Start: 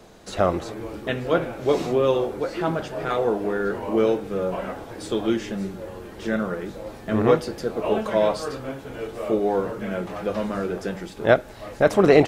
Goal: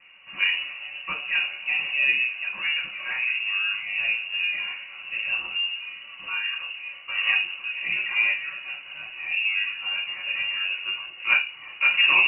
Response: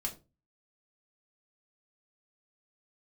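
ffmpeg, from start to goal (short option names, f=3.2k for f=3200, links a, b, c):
-filter_complex "[0:a]highpass=f=69:w=0.5412,highpass=f=69:w=1.3066[a];[1:a]atrim=start_sample=2205,asetrate=38367,aresample=44100[b];[a][b]afir=irnorm=-1:irlink=0,lowpass=f=2.6k:t=q:w=0.5098,lowpass=f=2.6k:t=q:w=0.6013,lowpass=f=2.6k:t=q:w=0.9,lowpass=f=2.6k:t=q:w=2.563,afreqshift=-3000,volume=-4.5dB"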